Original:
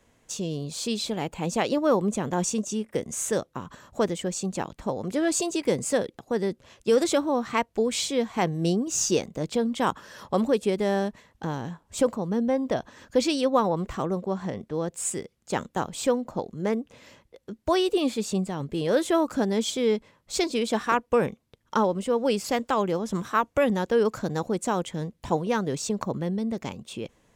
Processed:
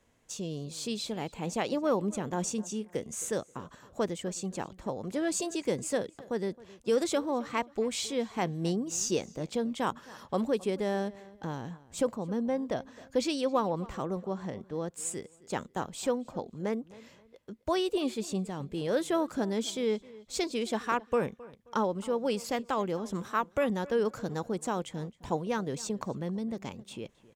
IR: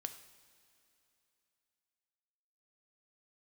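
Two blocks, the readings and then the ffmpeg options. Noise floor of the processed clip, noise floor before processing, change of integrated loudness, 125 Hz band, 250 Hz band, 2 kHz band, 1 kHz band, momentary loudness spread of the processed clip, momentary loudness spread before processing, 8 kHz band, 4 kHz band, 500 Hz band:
−61 dBFS, −67 dBFS, −6.0 dB, −6.0 dB, −6.0 dB, −6.0 dB, −6.0 dB, 9 LU, 9 LU, −6.0 dB, −6.0 dB, −6.0 dB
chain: -filter_complex "[0:a]asplit=2[link_01][link_02];[link_02]adelay=266,lowpass=frequency=3600:poles=1,volume=-20dB,asplit=2[link_03][link_04];[link_04]adelay=266,lowpass=frequency=3600:poles=1,volume=0.31[link_05];[link_01][link_03][link_05]amix=inputs=3:normalize=0,volume=-6dB"

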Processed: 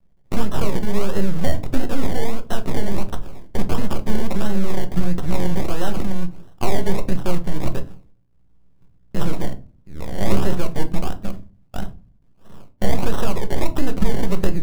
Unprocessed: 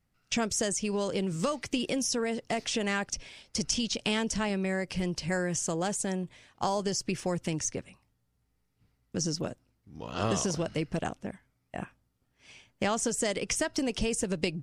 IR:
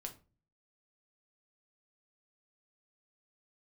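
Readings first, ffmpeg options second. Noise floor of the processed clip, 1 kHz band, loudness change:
−54 dBFS, +5.5 dB, +5.0 dB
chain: -filter_complex "[0:a]acrusher=samples=27:mix=1:aa=0.000001:lfo=1:lforange=16.2:lforate=1.5,aeval=exprs='max(val(0),0)':channel_layout=same,asplit=2[link_01][link_02];[1:a]atrim=start_sample=2205,lowshelf=frequency=360:gain=11.5[link_03];[link_02][link_03]afir=irnorm=-1:irlink=0,volume=6.5dB[link_04];[link_01][link_04]amix=inputs=2:normalize=0"

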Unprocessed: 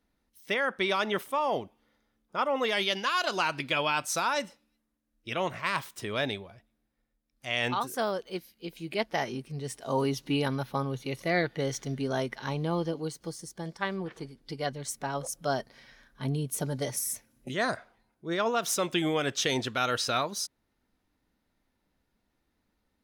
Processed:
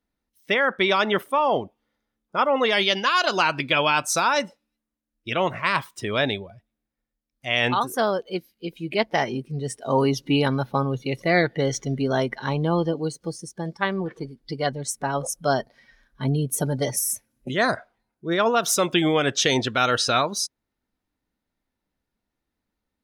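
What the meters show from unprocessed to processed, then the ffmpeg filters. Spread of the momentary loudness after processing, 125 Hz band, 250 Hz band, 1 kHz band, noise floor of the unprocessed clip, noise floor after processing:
11 LU, +7.5 dB, +7.5 dB, +7.5 dB, −78 dBFS, −83 dBFS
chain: -af "afftdn=noise_reduction=13:noise_floor=-45,volume=7.5dB"

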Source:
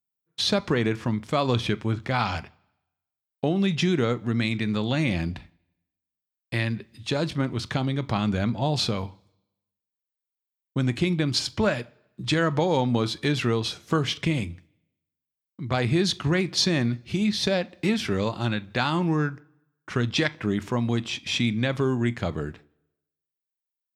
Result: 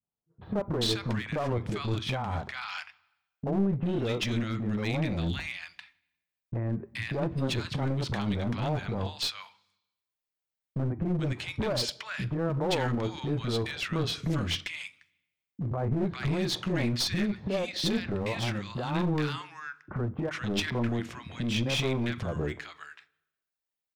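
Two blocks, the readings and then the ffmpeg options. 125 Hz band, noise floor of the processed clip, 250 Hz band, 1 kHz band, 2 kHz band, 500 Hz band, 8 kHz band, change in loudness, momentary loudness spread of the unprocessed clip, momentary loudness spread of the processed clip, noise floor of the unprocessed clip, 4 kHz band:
−4.0 dB, below −85 dBFS, −5.5 dB, −6.0 dB, −5.5 dB, −5.0 dB, −5.0 dB, −5.5 dB, 8 LU, 10 LU, below −85 dBFS, −4.5 dB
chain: -filter_complex "[0:a]highshelf=frequency=4300:gain=-8.5,asplit=2[link_01][link_02];[link_02]acompressor=threshold=-38dB:ratio=6,volume=-0.5dB[link_03];[link_01][link_03]amix=inputs=2:normalize=0,alimiter=limit=-17dB:level=0:latency=1:release=84,acrossover=split=280|1200[link_04][link_05][link_06];[link_05]adelay=30[link_07];[link_06]adelay=430[link_08];[link_04][link_07][link_08]amix=inputs=3:normalize=0,aeval=exprs='clip(val(0),-1,0.0398)':channel_layout=same"

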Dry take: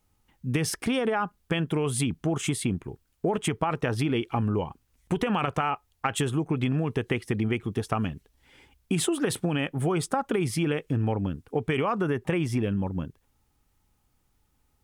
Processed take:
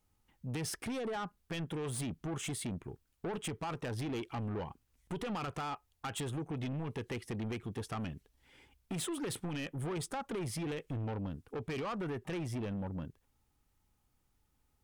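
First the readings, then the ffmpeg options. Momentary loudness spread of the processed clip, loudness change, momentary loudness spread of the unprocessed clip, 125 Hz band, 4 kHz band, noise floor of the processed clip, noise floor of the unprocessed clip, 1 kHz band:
5 LU, −11.5 dB, 5 LU, −11.0 dB, −9.5 dB, −77 dBFS, −71 dBFS, −11.5 dB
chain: -af "asoftclip=type=tanh:threshold=-28dB,volume=-6dB"

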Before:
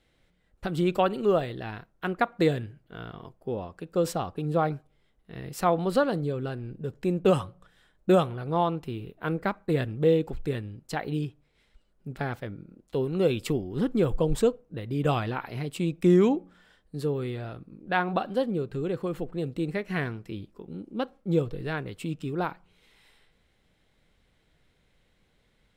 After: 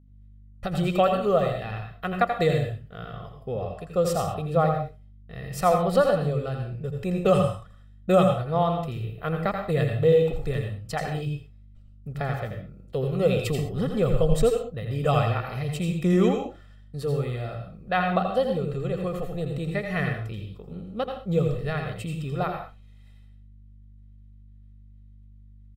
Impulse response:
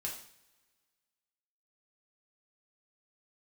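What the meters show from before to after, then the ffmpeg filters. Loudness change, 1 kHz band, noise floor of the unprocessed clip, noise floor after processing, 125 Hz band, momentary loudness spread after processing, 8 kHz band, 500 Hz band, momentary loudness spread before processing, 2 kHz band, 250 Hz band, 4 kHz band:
+2.5 dB, +3.5 dB, −68 dBFS, −49 dBFS, +4.5 dB, 16 LU, +3.5 dB, +3.0 dB, 16 LU, +2.0 dB, 0.0 dB, +2.5 dB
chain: -filter_complex "[0:a]agate=range=-33dB:threshold=-52dB:ratio=3:detection=peak,aecho=1:1:1.6:0.7,aeval=exprs='val(0)+0.00224*(sin(2*PI*50*n/s)+sin(2*PI*2*50*n/s)/2+sin(2*PI*3*50*n/s)/3+sin(2*PI*4*50*n/s)/4+sin(2*PI*5*50*n/s)/5)':channel_layout=same,asplit=2[link_01][link_02];[1:a]atrim=start_sample=2205,atrim=end_sample=6174,adelay=82[link_03];[link_02][link_03]afir=irnorm=-1:irlink=0,volume=-3.5dB[link_04];[link_01][link_04]amix=inputs=2:normalize=0"

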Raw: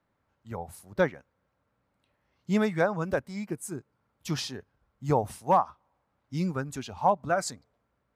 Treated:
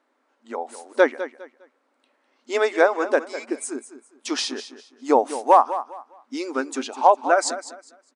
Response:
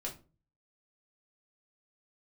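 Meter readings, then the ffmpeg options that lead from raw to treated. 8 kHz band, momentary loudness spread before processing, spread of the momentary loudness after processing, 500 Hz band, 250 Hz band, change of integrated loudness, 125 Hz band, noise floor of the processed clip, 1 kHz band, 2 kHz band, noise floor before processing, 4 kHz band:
+8.5 dB, 15 LU, 19 LU, +8.5 dB, +2.5 dB, +7.5 dB, below −30 dB, −69 dBFS, +8.5 dB, +9.0 dB, −77 dBFS, +8.5 dB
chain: -filter_complex "[0:a]afftfilt=real='re*between(b*sr/4096,230,10000)':imag='im*between(b*sr/4096,230,10000)':win_size=4096:overlap=0.75,asplit=2[link_01][link_02];[link_02]aecho=0:1:203|406|609:0.224|0.0582|0.0151[link_03];[link_01][link_03]amix=inputs=2:normalize=0,volume=8.5dB"

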